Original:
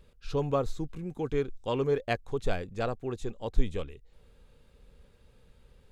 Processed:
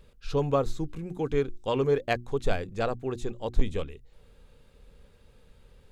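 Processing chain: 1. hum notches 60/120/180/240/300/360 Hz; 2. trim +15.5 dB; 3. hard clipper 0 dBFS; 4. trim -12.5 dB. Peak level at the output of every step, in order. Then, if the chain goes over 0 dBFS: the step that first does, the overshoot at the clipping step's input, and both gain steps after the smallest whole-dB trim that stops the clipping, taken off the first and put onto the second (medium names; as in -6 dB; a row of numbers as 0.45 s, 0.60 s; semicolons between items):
-11.5 dBFS, +4.0 dBFS, 0.0 dBFS, -12.5 dBFS; step 2, 4.0 dB; step 2 +11.5 dB, step 4 -8.5 dB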